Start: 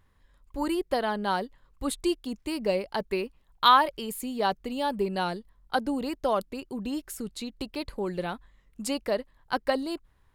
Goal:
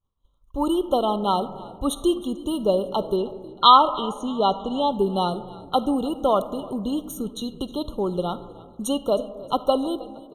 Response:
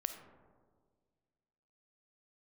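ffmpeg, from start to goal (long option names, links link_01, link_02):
-filter_complex "[0:a]agate=range=-33dB:threshold=-51dB:ratio=3:detection=peak,asettb=1/sr,asplit=3[link_01][link_02][link_03];[link_01]atrim=end=3.164[link_04];[link_02]atrim=start=3.16:end=4.92,asetpts=PTS-STARTPTS,afade=type=in:duration=0.004:curve=qsin,afade=type=out:start_time=1.756:duration=0.004:curve=qsin,lowpass=frequency=6900:width=0.5412,lowpass=frequency=6900:width=1.3066[link_05];[link_03]atrim=start=4.916[link_06];[link_04][link_05]acrossfade=duration=0.004:curve1=hsin:curve2=qsin[link_07];[link_07][link_06]acrossfade=duration=0.004:curve1=qsin:curve2=hsin,asplit=4[link_08][link_09][link_10][link_11];[link_09]adelay=314,afreqshift=-58,volume=-21dB[link_12];[link_10]adelay=628,afreqshift=-116,volume=-29dB[link_13];[link_11]adelay=942,afreqshift=-174,volume=-36.9dB[link_14];[link_08][link_12][link_13][link_14]amix=inputs=4:normalize=0,asplit=2[link_15][link_16];[1:a]atrim=start_sample=2205[link_17];[link_16][link_17]afir=irnorm=-1:irlink=0,volume=-1dB[link_18];[link_15][link_18]amix=inputs=2:normalize=0,afftfilt=real='re*eq(mod(floor(b*sr/1024/1400),2),0)':imag='im*eq(mod(floor(b*sr/1024/1400),2),0)':win_size=1024:overlap=0.75,volume=1dB"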